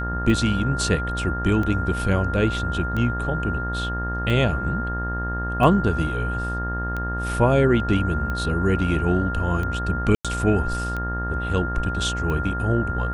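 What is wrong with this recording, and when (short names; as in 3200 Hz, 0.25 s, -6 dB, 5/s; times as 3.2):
buzz 60 Hz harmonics 31 -28 dBFS
tick 45 rpm -17 dBFS
tone 1400 Hz -28 dBFS
10.15–10.25 gap 96 ms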